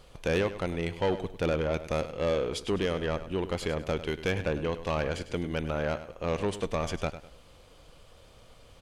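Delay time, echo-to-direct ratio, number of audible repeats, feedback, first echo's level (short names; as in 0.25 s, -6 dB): 0.101 s, -12.5 dB, 3, 32%, -13.0 dB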